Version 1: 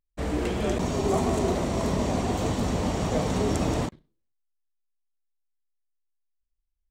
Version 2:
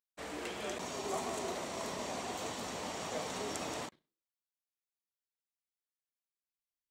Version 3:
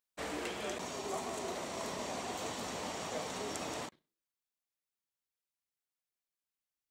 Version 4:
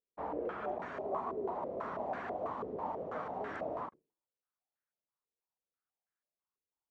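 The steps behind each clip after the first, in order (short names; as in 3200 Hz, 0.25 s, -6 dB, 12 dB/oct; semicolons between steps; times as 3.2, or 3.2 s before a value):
HPF 1100 Hz 6 dB/oct; gain -5 dB
vocal rider 0.5 s
stepped low-pass 6.1 Hz 440–1600 Hz; gain -3.5 dB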